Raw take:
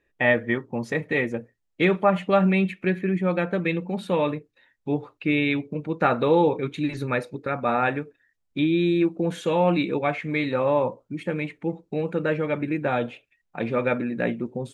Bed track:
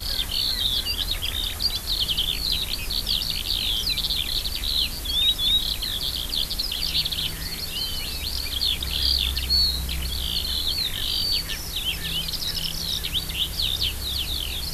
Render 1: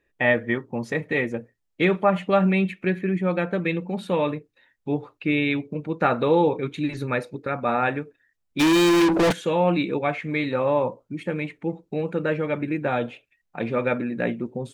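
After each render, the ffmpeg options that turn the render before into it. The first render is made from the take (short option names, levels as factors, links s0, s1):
-filter_complex "[0:a]asplit=3[s0][s1][s2];[s0]afade=t=out:st=8.59:d=0.02[s3];[s1]asplit=2[s4][s5];[s5]highpass=f=720:p=1,volume=100,asoftclip=type=tanh:threshold=0.251[s6];[s4][s6]amix=inputs=2:normalize=0,lowpass=f=5800:p=1,volume=0.501,afade=t=in:st=8.59:d=0.02,afade=t=out:st=9.31:d=0.02[s7];[s2]afade=t=in:st=9.31:d=0.02[s8];[s3][s7][s8]amix=inputs=3:normalize=0"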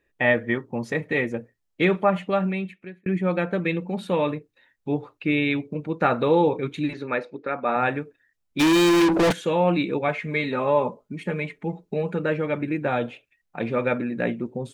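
-filter_complex "[0:a]asettb=1/sr,asplit=3[s0][s1][s2];[s0]atrim=end=6.934[s3];[s1]atrim=start=6.93:end=7.76,asetpts=PTS-STARTPTS,afade=t=in:d=0.004:c=qsin,afade=t=out:st=0.826:d=0.004:c=qsin,highpass=250,lowpass=3700[s4];[s2]atrim=start=7.756[s5];[s3][s4]acrossfade=d=0.004:c1=hsin:c2=qsin[s6];[s6][s5]acrossfade=d=0.004:c1=qsin:c2=hsin,asettb=1/sr,asplit=3[s7][s8][s9];[s7]atrim=end=10.084[s10];[s8]atrim=start=10.08:end=12.19,asetpts=PTS-STARTPTS,afade=t=in:d=0.004:c=qsin,afade=t=out:st=2.106:d=0.004:c=qsin,aecho=1:1:4.8:0.56,atrim=end_sample=93051[s11];[s9]atrim=start=12.186[s12];[s10][s11]acrossfade=d=0.004:c1=hsin:c2=qsin[s13];[s13][s12]acrossfade=d=0.004:c1=qsin:c2=hsin,asplit=2[s14][s15];[s14]atrim=end=3.06,asetpts=PTS-STARTPTS,afade=t=out:st=2:d=1.06[s16];[s15]atrim=start=3.06,asetpts=PTS-STARTPTS,afade=t=in:d=0.004:c=hsin[s17];[s16][s17]concat=n=2:v=0:a=1"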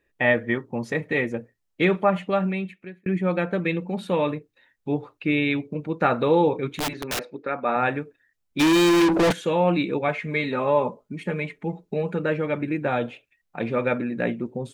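-filter_complex "[0:a]asettb=1/sr,asplit=3[s0][s1][s2];[s0]atrim=end=6.764[s3];[s1]atrim=start=6.76:end=7.37,asetpts=PTS-STARTPTS,afade=t=in:d=0.004:c=qsin,afade=t=out:st=0.606:d=0.004:c=qsin,aeval=exprs='(mod(11.9*val(0)+1,2)-1)/11.9':c=same[s4];[s2]atrim=start=7.366[s5];[s3][s4]acrossfade=d=0.004:c1=hsin:c2=qsin[s6];[s6][s5]acrossfade=d=0.004:c1=qsin:c2=hsin"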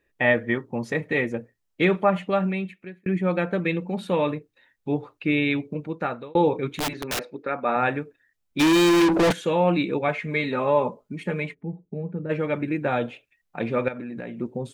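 -filter_complex "[0:a]asplit=3[s0][s1][s2];[s0]afade=t=out:st=11.53:d=0.02[s3];[s1]bandpass=f=110:t=q:w=0.65,afade=t=in:st=11.53:d=0.02,afade=t=out:st=12.29:d=0.02[s4];[s2]afade=t=in:st=12.29:d=0.02[s5];[s3][s4][s5]amix=inputs=3:normalize=0,asettb=1/sr,asplit=3[s6][s7][s8];[s6]atrim=end=13.884[s9];[s7]atrim=start=13.88:end=14.4,asetpts=PTS-STARTPTS,afade=t=in:d=0.004:c=qsin,afade=t=out:st=0.516:d=0.004:c=qsin,acompressor=threshold=0.0316:ratio=10:attack=3.2:release=140:knee=1:detection=peak[s10];[s8]atrim=start=14.396[s11];[s9][s10]acrossfade=d=0.004:c1=hsin:c2=qsin[s12];[s12][s11]acrossfade=d=0.004:c1=qsin:c2=hsin,asplit=2[s13][s14];[s13]atrim=end=6.35,asetpts=PTS-STARTPTS,afade=t=out:st=5.72:d=0.63[s15];[s14]atrim=start=6.35,asetpts=PTS-STARTPTS,afade=t=in:d=0.004:c=hsin[s16];[s15][s16]concat=n=2:v=0:a=1"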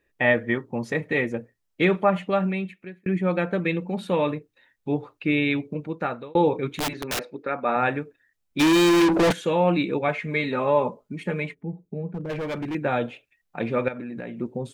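-filter_complex "[0:a]asettb=1/sr,asplit=3[s0][s1][s2];[s0]atrim=end=12.114[s3];[s1]atrim=start=12.11:end=12.75,asetpts=PTS-STARTPTS,afade=t=in:d=0.004:c=qsin,afade=t=out:st=0.636:d=0.004:c=qsin,asoftclip=type=hard:threshold=0.0473[s4];[s2]atrim=start=12.746[s5];[s3][s4]acrossfade=d=0.004:c1=hsin:c2=qsin[s6];[s6][s5]acrossfade=d=0.004:c1=qsin:c2=hsin"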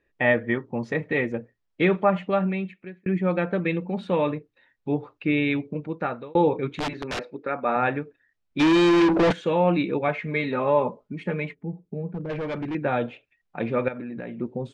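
-af "lowpass=6000,highshelf=f=4700:g=-8.5"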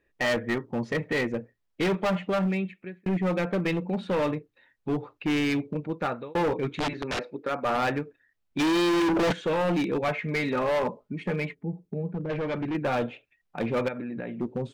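-af "volume=12.6,asoftclip=hard,volume=0.0794"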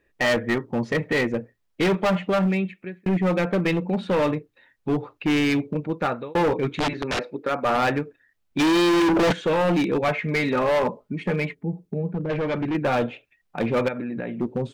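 -af "volume=1.68"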